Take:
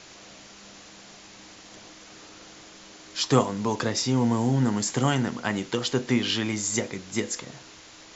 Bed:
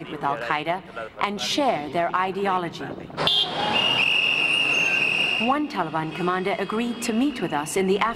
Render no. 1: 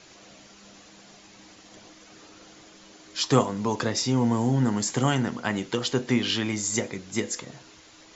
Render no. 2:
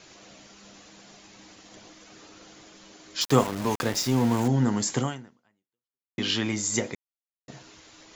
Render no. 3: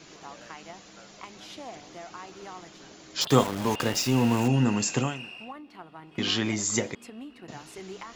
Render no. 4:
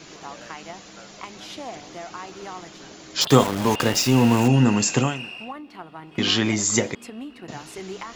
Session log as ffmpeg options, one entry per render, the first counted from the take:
ffmpeg -i in.wav -af "afftdn=noise_reduction=6:noise_floor=-48" out.wav
ffmpeg -i in.wav -filter_complex "[0:a]asettb=1/sr,asplit=3[link_01][link_02][link_03];[link_01]atrim=end=3.214[link_04];[link_02]atrim=start=3.21:end=4.48,asetpts=PTS-STARTPTS,afade=type=in:duration=0.004:curve=qsin,afade=type=out:start_time=1.266:duration=0.004:curve=qsin,aeval=exprs='val(0)*gte(abs(val(0)),0.0316)':channel_layout=same[link_05];[link_03]atrim=start=4.476[link_06];[link_04][link_05]acrossfade=duration=0.004:curve1=hsin:curve2=qsin[link_07];[link_07][link_06]acrossfade=duration=0.004:curve1=qsin:curve2=hsin,asplit=4[link_08][link_09][link_10][link_11];[link_08]atrim=end=6.18,asetpts=PTS-STARTPTS,afade=type=out:start_time=4.99:duration=1.19:curve=exp[link_12];[link_09]atrim=start=6.18:end=6.95,asetpts=PTS-STARTPTS,afade=type=in:duration=0.004:curve=hsin,afade=type=out:start_time=0.766:duration=0.004:curve=hsin[link_13];[link_10]atrim=start=6.95:end=7.48,asetpts=PTS-STARTPTS,volume=0[link_14];[link_11]atrim=start=7.48,asetpts=PTS-STARTPTS,afade=type=in:duration=0.004:curve=hsin[link_15];[link_12][link_13][link_14][link_15]concat=n=4:v=0:a=1" out.wav
ffmpeg -i in.wav -i bed.wav -filter_complex "[1:a]volume=-20dB[link_01];[0:a][link_01]amix=inputs=2:normalize=0" out.wav
ffmpeg -i in.wav -af "volume=6dB,alimiter=limit=-2dB:level=0:latency=1" out.wav

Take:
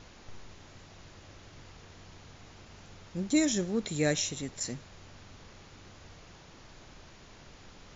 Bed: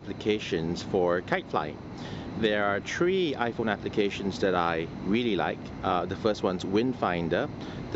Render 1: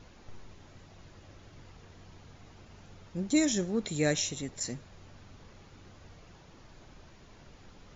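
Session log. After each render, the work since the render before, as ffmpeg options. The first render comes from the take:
ffmpeg -i in.wav -af "afftdn=noise_reduction=6:noise_floor=-54" out.wav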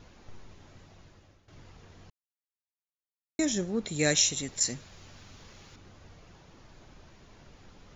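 ffmpeg -i in.wav -filter_complex "[0:a]asettb=1/sr,asplit=3[link_01][link_02][link_03];[link_01]atrim=end=3.994[link_04];[link_02]atrim=start=3.99:end=5.76,asetpts=PTS-STARTPTS,afade=type=in:duration=0.004:curve=qsin,afade=type=out:start_time=1.766:duration=0.004:curve=qsin,highshelf=frequency=2000:gain=9.5[link_05];[link_03]atrim=start=5.756[link_06];[link_04][link_05]acrossfade=duration=0.004:curve1=hsin:curve2=qsin[link_07];[link_07][link_06]acrossfade=duration=0.004:curve1=qsin:curve2=hsin,asplit=4[link_08][link_09][link_10][link_11];[link_08]atrim=end=1.48,asetpts=PTS-STARTPTS,afade=type=out:start_time=0.67:duration=0.81:curve=qsin:silence=0.158489[link_12];[link_09]atrim=start=1.48:end=2.1,asetpts=PTS-STARTPTS,afade=type=in:duration=0.004:curve=hsin:silence=0.158489,afade=type=out:start_time=0.616:duration=0.004:curve=hsin[link_13];[link_10]atrim=start=2.1:end=3.39,asetpts=PTS-STARTPTS,volume=0[link_14];[link_11]atrim=start=3.39,asetpts=PTS-STARTPTS,afade=type=in:duration=0.004:curve=hsin[link_15];[link_12][link_13][link_14][link_15]concat=n=4:v=0:a=1" out.wav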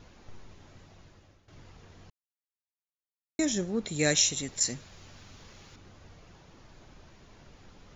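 ffmpeg -i in.wav -af anull out.wav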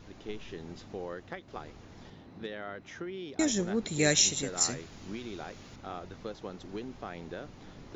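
ffmpeg -i in.wav -i bed.wav -filter_complex "[1:a]volume=-14.5dB[link_01];[0:a][link_01]amix=inputs=2:normalize=0" out.wav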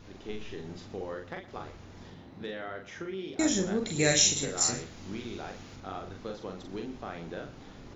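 ffmpeg -i in.wav -filter_complex "[0:a]asplit=2[link_01][link_02];[link_02]adelay=42,volume=-4dB[link_03];[link_01][link_03]amix=inputs=2:normalize=0,asplit=2[link_04][link_05];[link_05]adelay=116.6,volume=-16dB,highshelf=frequency=4000:gain=-2.62[link_06];[link_04][link_06]amix=inputs=2:normalize=0" out.wav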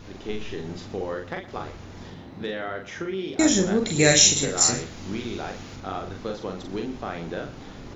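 ffmpeg -i in.wav -af "volume=7.5dB,alimiter=limit=-3dB:level=0:latency=1" out.wav

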